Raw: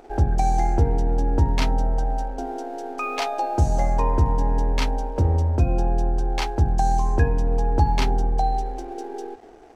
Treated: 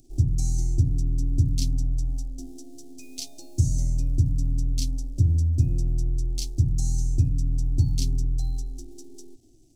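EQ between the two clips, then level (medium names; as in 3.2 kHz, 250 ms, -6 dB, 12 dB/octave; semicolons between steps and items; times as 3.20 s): Chebyshev band-stop 160–6900 Hz, order 2; dynamic bell 4.9 kHz, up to +3 dB, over -54 dBFS, Q 1.2; static phaser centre 300 Hz, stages 8; +4.5 dB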